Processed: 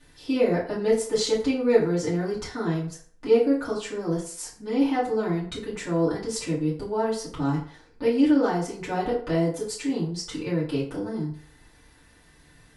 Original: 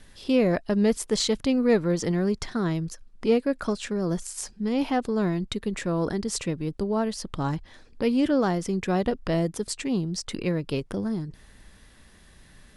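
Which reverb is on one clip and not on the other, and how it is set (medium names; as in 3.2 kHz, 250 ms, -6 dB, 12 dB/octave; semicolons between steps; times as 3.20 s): FDN reverb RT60 0.51 s, low-frequency decay 0.7×, high-frequency decay 0.65×, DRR -10 dB; trim -10.5 dB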